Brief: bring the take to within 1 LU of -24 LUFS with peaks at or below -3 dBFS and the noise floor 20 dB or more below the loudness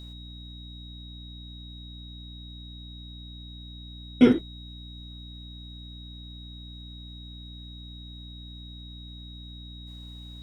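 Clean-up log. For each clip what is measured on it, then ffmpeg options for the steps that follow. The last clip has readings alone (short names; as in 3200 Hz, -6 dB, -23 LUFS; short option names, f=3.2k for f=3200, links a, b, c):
hum 60 Hz; harmonics up to 300 Hz; hum level -41 dBFS; steady tone 3800 Hz; tone level -46 dBFS; loudness -34.0 LUFS; peak -4.5 dBFS; loudness target -24.0 LUFS
-> -af "bandreject=f=60:t=h:w=4,bandreject=f=120:t=h:w=4,bandreject=f=180:t=h:w=4,bandreject=f=240:t=h:w=4,bandreject=f=300:t=h:w=4"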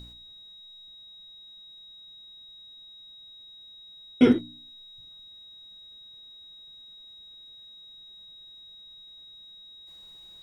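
hum none; steady tone 3800 Hz; tone level -46 dBFS
-> -af "bandreject=f=3.8k:w=30"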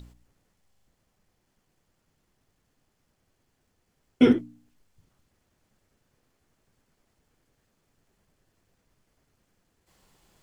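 steady tone none; loudness -22.0 LUFS; peak -5.5 dBFS; loudness target -24.0 LUFS
-> -af "volume=-2dB"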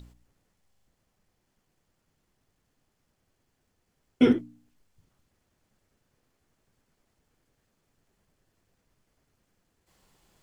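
loudness -24.0 LUFS; peak -7.5 dBFS; noise floor -76 dBFS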